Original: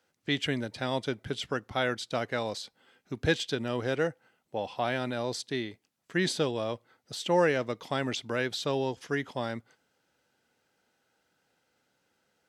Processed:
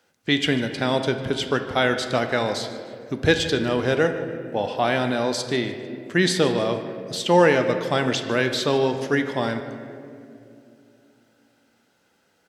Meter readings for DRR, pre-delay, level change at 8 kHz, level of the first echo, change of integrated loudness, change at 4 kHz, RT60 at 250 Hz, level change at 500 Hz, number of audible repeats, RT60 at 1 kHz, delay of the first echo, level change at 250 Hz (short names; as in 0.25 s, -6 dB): 6.5 dB, 3 ms, +8.5 dB, -18.0 dB, +9.0 dB, +8.5 dB, 3.7 s, +9.0 dB, 1, 2.1 s, 0.15 s, +9.5 dB